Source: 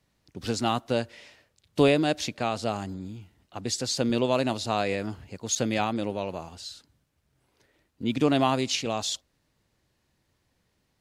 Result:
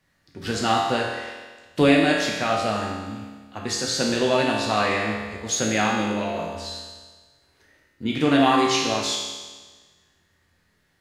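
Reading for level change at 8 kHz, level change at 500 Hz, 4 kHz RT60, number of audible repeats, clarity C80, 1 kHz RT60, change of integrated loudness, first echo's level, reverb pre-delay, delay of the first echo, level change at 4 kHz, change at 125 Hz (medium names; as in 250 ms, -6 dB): +4.5 dB, +3.5 dB, 1.4 s, no echo, 3.5 dB, 1.4 s, +5.0 dB, no echo, 5 ms, no echo, +5.5 dB, +1.5 dB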